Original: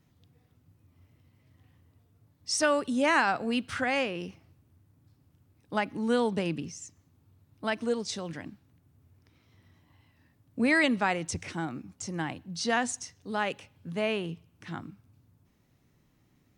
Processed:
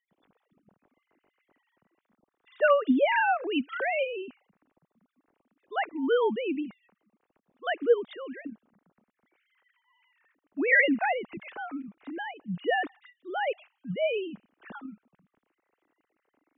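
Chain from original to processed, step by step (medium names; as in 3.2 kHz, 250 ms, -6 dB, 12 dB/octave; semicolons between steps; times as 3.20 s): formants replaced by sine waves; trim +1.5 dB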